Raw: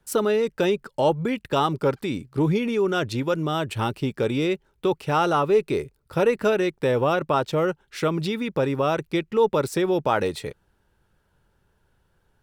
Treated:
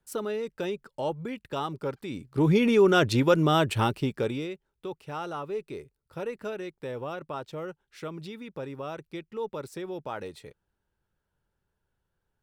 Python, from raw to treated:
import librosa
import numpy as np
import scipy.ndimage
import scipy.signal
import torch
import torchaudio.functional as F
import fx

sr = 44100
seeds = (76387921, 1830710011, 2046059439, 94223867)

y = fx.gain(x, sr, db=fx.line((2.03, -10.0), (2.64, 3.0), (3.61, 3.0), (4.28, -5.0), (4.54, -14.0)))